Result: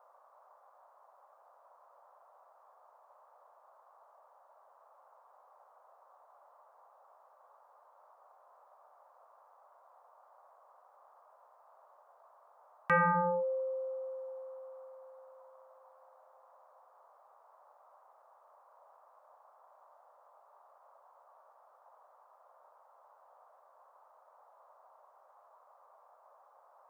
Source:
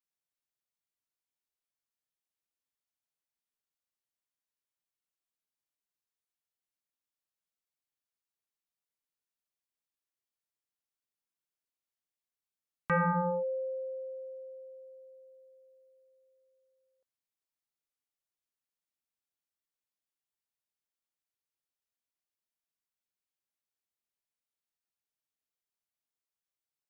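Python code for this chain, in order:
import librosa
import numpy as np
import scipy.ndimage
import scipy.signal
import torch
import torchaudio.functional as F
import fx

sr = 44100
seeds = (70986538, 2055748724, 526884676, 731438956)

y = fx.low_shelf(x, sr, hz=390.0, db=-10.5)
y = fx.dmg_noise_band(y, sr, seeds[0], low_hz=550.0, high_hz=1200.0, level_db=-66.0)
y = F.gain(torch.from_numpy(y), 3.5).numpy()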